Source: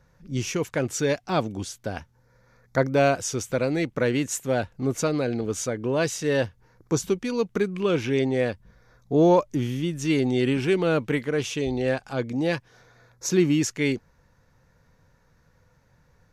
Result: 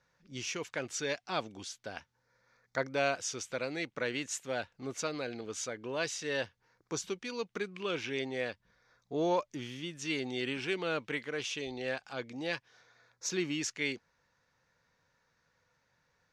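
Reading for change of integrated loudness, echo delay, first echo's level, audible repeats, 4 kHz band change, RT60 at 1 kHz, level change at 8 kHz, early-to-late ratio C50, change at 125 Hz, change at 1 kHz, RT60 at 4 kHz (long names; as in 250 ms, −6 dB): −11.0 dB, no echo audible, no echo audible, no echo audible, −4.0 dB, no reverb audible, −7.5 dB, no reverb audible, −18.5 dB, −9.0 dB, no reverb audible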